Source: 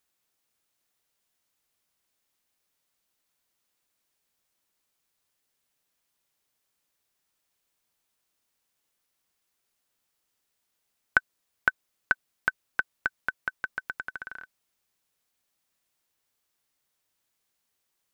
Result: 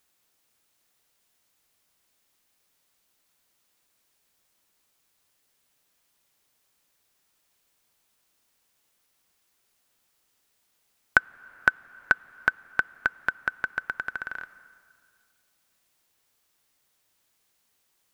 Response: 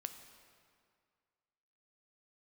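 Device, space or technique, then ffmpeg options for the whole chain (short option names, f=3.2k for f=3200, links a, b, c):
ducked reverb: -filter_complex "[0:a]asplit=3[a][b][c];[1:a]atrim=start_sample=2205[d];[b][d]afir=irnorm=-1:irlink=0[e];[c]apad=whole_len=799660[f];[e][f]sidechaincompress=threshold=-37dB:ratio=3:attack=16:release=440,volume=1dB[g];[a][g]amix=inputs=2:normalize=0,volume=2dB"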